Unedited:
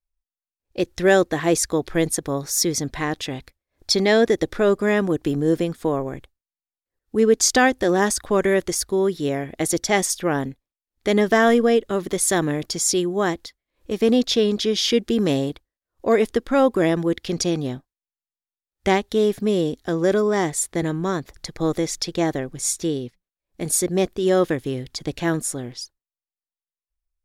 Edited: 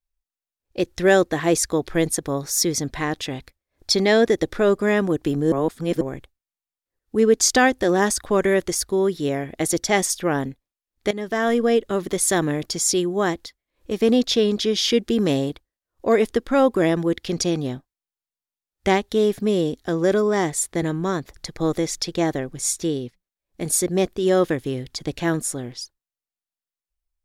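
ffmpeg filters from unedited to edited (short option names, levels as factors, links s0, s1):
-filter_complex "[0:a]asplit=4[s0][s1][s2][s3];[s0]atrim=end=5.522[s4];[s1]atrim=start=5.518:end=6.012,asetpts=PTS-STARTPTS,areverse[s5];[s2]atrim=start=6.008:end=11.11,asetpts=PTS-STARTPTS,afade=t=out:st=5.098:d=0.004:c=hsin:silence=0.158489[s6];[s3]atrim=start=11.11,asetpts=PTS-STARTPTS,afade=t=in:d=0.7:silence=0.158489[s7];[s4][s5]acrossfade=d=0.004:c1=hsin:c2=hsin[s8];[s6][s7]concat=n=2:v=0:a=1[s9];[s8][s9]acrossfade=d=0.004:c1=hsin:c2=hsin"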